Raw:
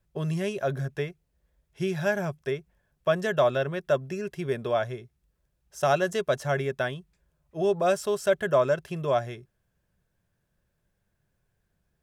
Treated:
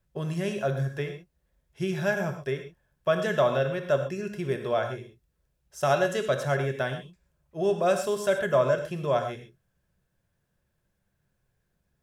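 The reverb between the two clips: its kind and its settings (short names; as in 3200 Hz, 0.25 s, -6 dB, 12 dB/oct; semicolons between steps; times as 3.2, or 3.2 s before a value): non-linear reverb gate 0.15 s flat, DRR 5.5 dB; gain -1 dB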